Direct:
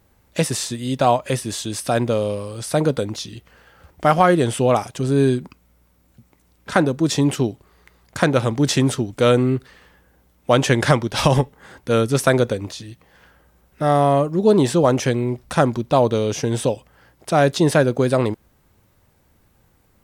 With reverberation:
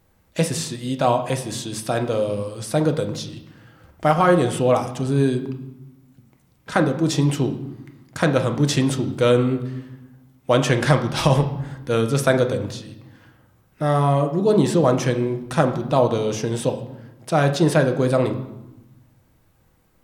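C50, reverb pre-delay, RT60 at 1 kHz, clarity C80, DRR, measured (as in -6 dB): 11.0 dB, 6 ms, 0.95 s, 13.5 dB, 6.0 dB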